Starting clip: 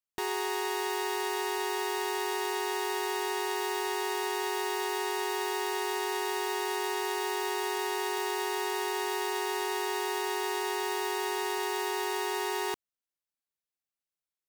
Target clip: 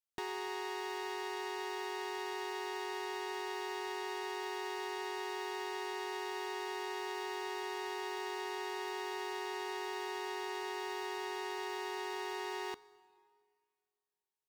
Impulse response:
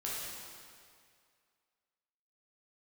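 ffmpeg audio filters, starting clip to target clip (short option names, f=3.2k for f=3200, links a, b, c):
-filter_complex "[0:a]acrossover=split=1400|6000[a][b][c];[a]acompressor=threshold=-34dB:ratio=4[d];[b]acompressor=threshold=-40dB:ratio=4[e];[c]acompressor=threshold=-57dB:ratio=4[f];[d][e][f]amix=inputs=3:normalize=0,asplit=2[g][h];[1:a]atrim=start_sample=2205,adelay=13[i];[h][i]afir=irnorm=-1:irlink=0,volume=-21.5dB[j];[g][j]amix=inputs=2:normalize=0,volume=-4.5dB"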